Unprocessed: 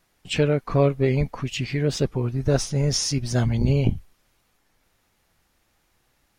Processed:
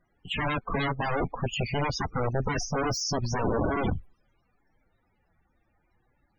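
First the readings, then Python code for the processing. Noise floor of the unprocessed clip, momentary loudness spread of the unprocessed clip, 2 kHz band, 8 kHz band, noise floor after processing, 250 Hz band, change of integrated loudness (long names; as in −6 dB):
−68 dBFS, 7 LU, +1.5 dB, −6.0 dB, −72 dBFS, −6.5 dB, −6.0 dB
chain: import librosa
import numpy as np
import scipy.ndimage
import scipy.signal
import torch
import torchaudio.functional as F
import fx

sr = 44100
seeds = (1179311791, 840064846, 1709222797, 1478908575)

y = (np.mod(10.0 ** (19.5 / 20.0) * x + 1.0, 2.0) - 1.0) / 10.0 ** (19.5 / 20.0)
y = fx.spec_topn(y, sr, count=32)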